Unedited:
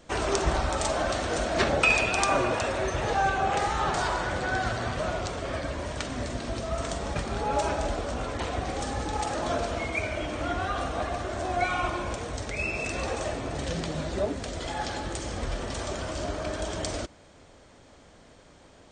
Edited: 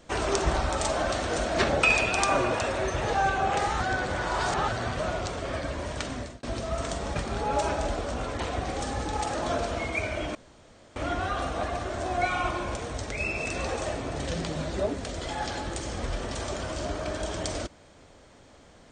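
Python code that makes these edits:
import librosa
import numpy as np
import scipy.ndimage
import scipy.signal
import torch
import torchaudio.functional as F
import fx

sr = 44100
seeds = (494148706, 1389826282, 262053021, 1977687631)

y = fx.edit(x, sr, fx.reverse_span(start_s=3.8, length_s=0.88),
    fx.fade_out_span(start_s=6.11, length_s=0.32),
    fx.insert_room_tone(at_s=10.35, length_s=0.61), tone=tone)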